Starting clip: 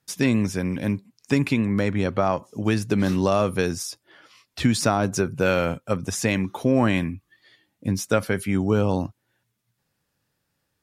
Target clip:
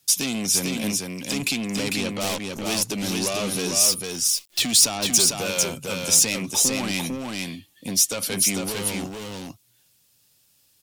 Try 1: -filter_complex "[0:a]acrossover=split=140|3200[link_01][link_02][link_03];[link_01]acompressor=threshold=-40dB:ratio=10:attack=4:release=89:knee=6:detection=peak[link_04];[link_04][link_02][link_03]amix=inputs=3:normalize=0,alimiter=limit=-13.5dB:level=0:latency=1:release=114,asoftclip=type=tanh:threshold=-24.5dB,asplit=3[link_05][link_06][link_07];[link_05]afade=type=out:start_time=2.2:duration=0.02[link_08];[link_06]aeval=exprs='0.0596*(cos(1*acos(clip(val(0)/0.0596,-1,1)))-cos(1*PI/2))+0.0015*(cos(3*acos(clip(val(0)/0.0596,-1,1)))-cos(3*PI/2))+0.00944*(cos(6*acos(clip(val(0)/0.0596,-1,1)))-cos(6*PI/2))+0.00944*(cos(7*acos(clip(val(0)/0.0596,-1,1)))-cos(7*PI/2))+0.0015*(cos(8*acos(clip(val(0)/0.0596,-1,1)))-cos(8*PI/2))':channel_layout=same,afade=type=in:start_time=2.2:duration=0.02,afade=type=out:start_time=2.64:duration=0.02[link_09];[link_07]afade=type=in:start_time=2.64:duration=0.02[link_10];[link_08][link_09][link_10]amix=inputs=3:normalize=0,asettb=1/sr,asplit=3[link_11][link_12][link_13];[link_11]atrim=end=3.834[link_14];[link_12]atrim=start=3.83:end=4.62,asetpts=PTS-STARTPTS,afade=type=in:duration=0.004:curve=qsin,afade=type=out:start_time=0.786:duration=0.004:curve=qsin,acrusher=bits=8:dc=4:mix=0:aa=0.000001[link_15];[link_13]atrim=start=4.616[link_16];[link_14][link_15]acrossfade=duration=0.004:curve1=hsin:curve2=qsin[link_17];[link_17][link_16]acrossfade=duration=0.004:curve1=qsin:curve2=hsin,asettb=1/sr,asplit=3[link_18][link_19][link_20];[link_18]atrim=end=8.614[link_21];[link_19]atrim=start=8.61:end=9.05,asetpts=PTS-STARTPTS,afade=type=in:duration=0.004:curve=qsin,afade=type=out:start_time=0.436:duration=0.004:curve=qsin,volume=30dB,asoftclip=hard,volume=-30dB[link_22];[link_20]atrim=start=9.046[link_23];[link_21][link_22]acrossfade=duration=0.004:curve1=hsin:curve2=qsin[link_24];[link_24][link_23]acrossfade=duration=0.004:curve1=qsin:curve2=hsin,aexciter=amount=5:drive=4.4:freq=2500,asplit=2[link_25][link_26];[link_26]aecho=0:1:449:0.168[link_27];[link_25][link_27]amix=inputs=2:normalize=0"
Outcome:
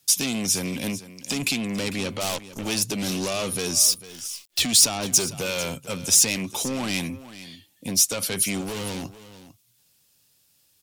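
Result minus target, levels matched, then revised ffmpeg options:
downward compressor: peak gain reduction −9 dB; echo-to-direct −11 dB
-filter_complex "[0:a]acrossover=split=140|3200[link_01][link_02][link_03];[link_01]acompressor=threshold=-50dB:ratio=10:attack=4:release=89:knee=6:detection=peak[link_04];[link_04][link_02][link_03]amix=inputs=3:normalize=0,alimiter=limit=-13.5dB:level=0:latency=1:release=114,asoftclip=type=tanh:threshold=-24.5dB,asplit=3[link_05][link_06][link_07];[link_05]afade=type=out:start_time=2.2:duration=0.02[link_08];[link_06]aeval=exprs='0.0596*(cos(1*acos(clip(val(0)/0.0596,-1,1)))-cos(1*PI/2))+0.0015*(cos(3*acos(clip(val(0)/0.0596,-1,1)))-cos(3*PI/2))+0.00944*(cos(6*acos(clip(val(0)/0.0596,-1,1)))-cos(6*PI/2))+0.00944*(cos(7*acos(clip(val(0)/0.0596,-1,1)))-cos(7*PI/2))+0.0015*(cos(8*acos(clip(val(0)/0.0596,-1,1)))-cos(8*PI/2))':channel_layout=same,afade=type=in:start_time=2.2:duration=0.02,afade=type=out:start_time=2.64:duration=0.02[link_09];[link_07]afade=type=in:start_time=2.64:duration=0.02[link_10];[link_08][link_09][link_10]amix=inputs=3:normalize=0,asettb=1/sr,asplit=3[link_11][link_12][link_13];[link_11]atrim=end=3.834[link_14];[link_12]atrim=start=3.83:end=4.62,asetpts=PTS-STARTPTS,afade=type=in:duration=0.004:curve=qsin,afade=type=out:start_time=0.786:duration=0.004:curve=qsin,acrusher=bits=8:dc=4:mix=0:aa=0.000001[link_15];[link_13]atrim=start=4.616[link_16];[link_14][link_15]acrossfade=duration=0.004:curve1=hsin:curve2=qsin[link_17];[link_17][link_16]acrossfade=duration=0.004:curve1=qsin:curve2=hsin,asettb=1/sr,asplit=3[link_18][link_19][link_20];[link_18]atrim=end=8.614[link_21];[link_19]atrim=start=8.61:end=9.05,asetpts=PTS-STARTPTS,afade=type=in:duration=0.004:curve=qsin,afade=type=out:start_time=0.436:duration=0.004:curve=qsin,volume=30dB,asoftclip=hard,volume=-30dB[link_22];[link_20]atrim=start=9.046[link_23];[link_21][link_22]acrossfade=duration=0.004:curve1=hsin:curve2=qsin[link_24];[link_24][link_23]acrossfade=duration=0.004:curve1=qsin:curve2=hsin,aexciter=amount=5:drive=4.4:freq=2500,asplit=2[link_25][link_26];[link_26]aecho=0:1:449:0.668[link_27];[link_25][link_27]amix=inputs=2:normalize=0"

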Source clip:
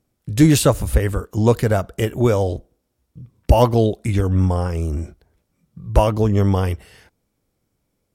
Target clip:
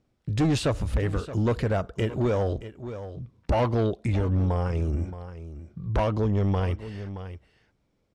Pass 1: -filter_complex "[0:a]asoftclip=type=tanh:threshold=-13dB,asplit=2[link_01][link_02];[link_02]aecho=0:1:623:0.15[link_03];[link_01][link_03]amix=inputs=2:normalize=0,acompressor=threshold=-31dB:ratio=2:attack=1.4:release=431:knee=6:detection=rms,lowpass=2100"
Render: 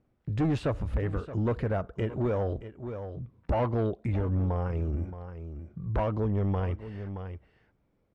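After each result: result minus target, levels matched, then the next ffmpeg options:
4,000 Hz band −8.0 dB; downward compressor: peak gain reduction +4 dB
-filter_complex "[0:a]asoftclip=type=tanh:threshold=-13dB,asplit=2[link_01][link_02];[link_02]aecho=0:1:623:0.15[link_03];[link_01][link_03]amix=inputs=2:normalize=0,acompressor=threshold=-31dB:ratio=2:attack=1.4:release=431:knee=6:detection=rms,lowpass=4700"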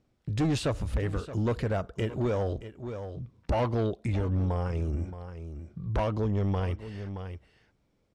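downward compressor: peak gain reduction +4 dB
-filter_complex "[0:a]asoftclip=type=tanh:threshold=-13dB,asplit=2[link_01][link_02];[link_02]aecho=0:1:623:0.15[link_03];[link_01][link_03]amix=inputs=2:normalize=0,acompressor=threshold=-23.5dB:ratio=2:attack=1.4:release=431:knee=6:detection=rms,lowpass=4700"

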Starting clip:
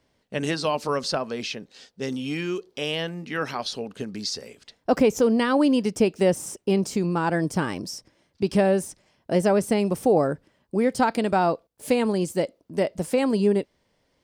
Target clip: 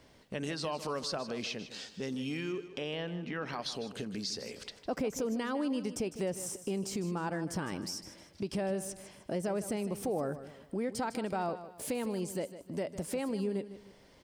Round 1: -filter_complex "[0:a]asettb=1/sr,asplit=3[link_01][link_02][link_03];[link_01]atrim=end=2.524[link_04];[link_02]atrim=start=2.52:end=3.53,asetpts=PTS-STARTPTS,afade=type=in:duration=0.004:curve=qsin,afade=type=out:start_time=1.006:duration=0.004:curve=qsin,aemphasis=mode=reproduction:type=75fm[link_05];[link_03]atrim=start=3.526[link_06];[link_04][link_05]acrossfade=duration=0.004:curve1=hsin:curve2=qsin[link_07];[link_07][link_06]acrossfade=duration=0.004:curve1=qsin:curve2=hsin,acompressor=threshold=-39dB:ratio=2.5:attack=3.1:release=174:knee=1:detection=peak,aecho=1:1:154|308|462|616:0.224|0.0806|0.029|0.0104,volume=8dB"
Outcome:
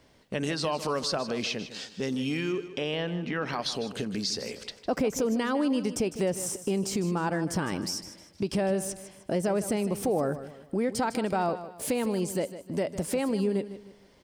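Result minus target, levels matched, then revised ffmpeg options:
downward compressor: peak gain reduction −6.5 dB
-filter_complex "[0:a]asettb=1/sr,asplit=3[link_01][link_02][link_03];[link_01]atrim=end=2.524[link_04];[link_02]atrim=start=2.52:end=3.53,asetpts=PTS-STARTPTS,afade=type=in:duration=0.004:curve=qsin,afade=type=out:start_time=1.006:duration=0.004:curve=qsin,aemphasis=mode=reproduction:type=75fm[link_05];[link_03]atrim=start=3.526[link_06];[link_04][link_05]acrossfade=duration=0.004:curve1=hsin:curve2=qsin[link_07];[link_07][link_06]acrossfade=duration=0.004:curve1=qsin:curve2=hsin,acompressor=threshold=-50dB:ratio=2.5:attack=3.1:release=174:knee=1:detection=peak,aecho=1:1:154|308|462|616:0.224|0.0806|0.029|0.0104,volume=8dB"

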